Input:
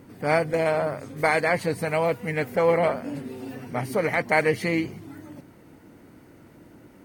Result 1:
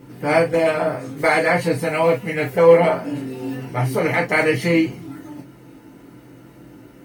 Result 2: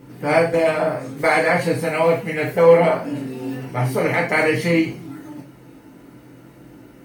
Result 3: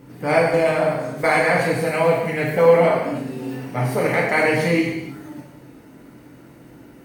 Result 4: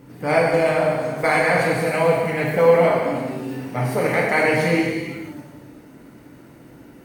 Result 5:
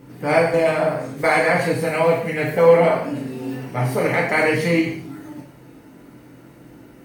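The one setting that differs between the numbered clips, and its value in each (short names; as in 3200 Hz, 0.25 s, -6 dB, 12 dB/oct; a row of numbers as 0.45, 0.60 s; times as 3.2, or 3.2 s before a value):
non-linear reverb, gate: 80, 130, 340, 540, 220 ms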